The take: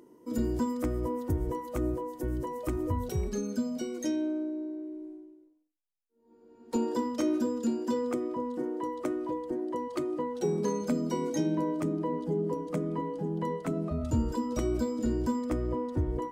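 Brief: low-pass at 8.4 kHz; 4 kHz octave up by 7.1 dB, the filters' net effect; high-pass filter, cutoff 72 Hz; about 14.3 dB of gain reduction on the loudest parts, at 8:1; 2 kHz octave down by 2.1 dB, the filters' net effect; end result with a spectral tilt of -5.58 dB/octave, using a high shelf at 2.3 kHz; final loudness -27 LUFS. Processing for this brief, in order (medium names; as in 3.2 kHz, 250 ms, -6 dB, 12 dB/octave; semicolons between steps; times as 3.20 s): high-pass 72 Hz; low-pass 8.4 kHz; peaking EQ 2 kHz -7.5 dB; treble shelf 2.3 kHz +7.5 dB; peaking EQ 4 kHz +4.5 dB; compression 8:1, threshold -40 dBFS; trim +16.5 dB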